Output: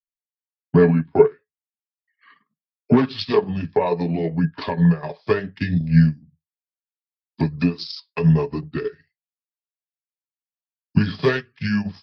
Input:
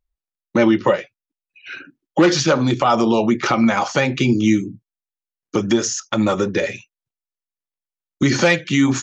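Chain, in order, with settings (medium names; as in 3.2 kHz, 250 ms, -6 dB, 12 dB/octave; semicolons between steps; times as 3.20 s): dynamic bell 1.8 kHz, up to -5 dB, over -41 dBFS, Q 4.5; transient shaper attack +5 dB, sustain -12 dB; small resonant body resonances 210/570/2200 Hz, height 10 dB, ringing for 95 ms; tape speed -25%; flange 0.68 Hz, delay 0.5 ms, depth 7.3 ms, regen -75%; three bands expanded up and down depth 70%; trim -4.5 dB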